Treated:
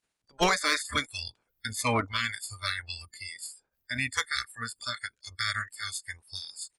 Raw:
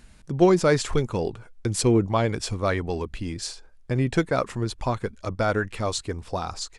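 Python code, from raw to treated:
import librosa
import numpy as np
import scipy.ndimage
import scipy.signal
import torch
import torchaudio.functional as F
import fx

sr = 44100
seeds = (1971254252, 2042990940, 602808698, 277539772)

y = fx.spec_clip(x, sr, under_db=30)
y = fx.noise_reduce_blind(y, sr, reduce_db=29)
y = fx.cheby_harmonics(y, sr, harmonics=(5,), levels_db=(-19,), full_scale_db=-3.0)
y = F.gain(torch.from_numpy(y), -8.0).numpy()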